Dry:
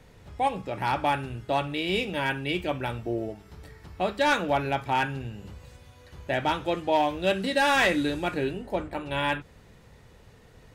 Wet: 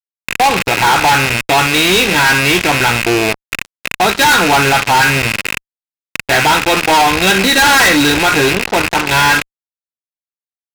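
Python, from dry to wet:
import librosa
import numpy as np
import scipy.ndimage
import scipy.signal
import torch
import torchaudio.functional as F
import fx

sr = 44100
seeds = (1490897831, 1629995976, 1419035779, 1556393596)

p1 = fx.rattle_buzz(x, sr, strikes_db=-40.0, level_db=-23.0)
p2 = fx.low_shelf(p1, sr, hz=480.0, db=-6.5)
p3 = fx.level_steps(p2, sr, step_db=24)
p4 = p2 + F.gain(torch.from_numpy(p3), 0.5).numpy()
p5 = scipy.signal.sosfilt(scipy.signal.cheby1(6, 6, 5500.0, 'lowpass', fs=sr, output='sos'), p4)
p6 = fx.notch_comb(p5, sr, f0_hz=590.0)
p7 = fx.fuzz(p6, sr, gain_db=42.0, gate_db=-43.0)
y = F.gain(torch.from_numpy(p7), 5.5).numpy()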